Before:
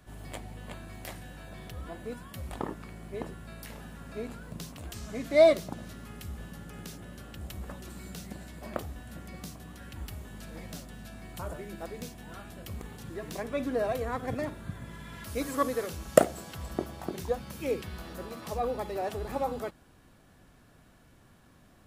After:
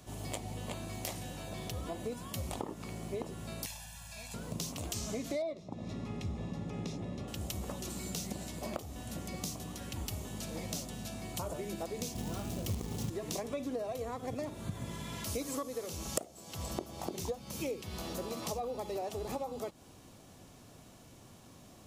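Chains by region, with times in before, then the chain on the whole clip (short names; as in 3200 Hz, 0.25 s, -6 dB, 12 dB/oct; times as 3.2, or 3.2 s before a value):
3.66–4.34 passive tone stack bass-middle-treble 10-0-10 + comb 1.2 ms, depth 88%
5.42–7.28 Bessel low-pass 3200 Hz + low shelf 210 Hz +10 dB + notch comb 1500 Hz
12.15–13.1 low shelf 420 Hz +9 dB + short-mantissa float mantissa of 2-bit
whole clip: low shelf 120 Hz -11 dB; compressor 10:1, threshold -40 dBFS; fifteen-band EQ 100 Hz +5 dB, 1600 Hz -11 dB, 6300 Hz +6 dB; gain +6 dB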